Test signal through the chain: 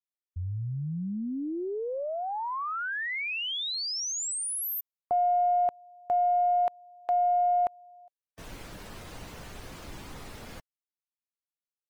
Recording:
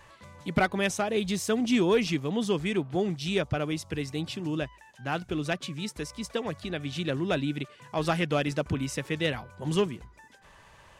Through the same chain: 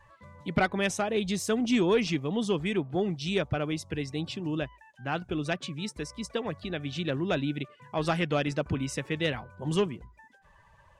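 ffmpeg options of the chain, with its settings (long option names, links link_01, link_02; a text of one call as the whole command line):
ffmpeg -i in.wav -af "afftdn=noise_reduction=13:noise_floor=-50,aeval=exprs='0.188*(cos(1*acos(clip(val(0)/0.188,-1,1)))-cos(1*PI/2))+0.0075*(cos(2*acos(clip(val(0)/0.188,-1,1)))-cos(2*PI/2))+0.00376*(cos(4*acos(clip(val(0)/0.188,-1,1)))-cos(4*PI/2))':channel_layout=same,acontrast=80,volume=-7.5dB" out.wav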